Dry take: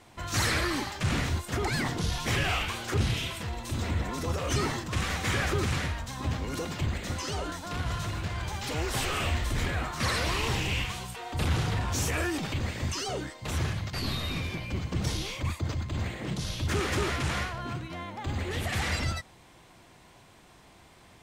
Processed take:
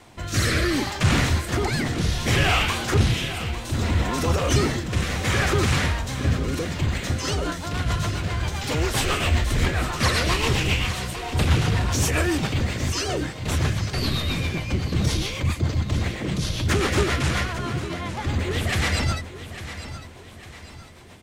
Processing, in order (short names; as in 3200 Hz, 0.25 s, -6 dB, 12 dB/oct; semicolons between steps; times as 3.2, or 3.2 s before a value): rotary speaker horn 0.65 Hz, later 7.5 Hz, at 6.75; feedback echo 0.852 s, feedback 42%, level -12.5 dB; gain +9 dB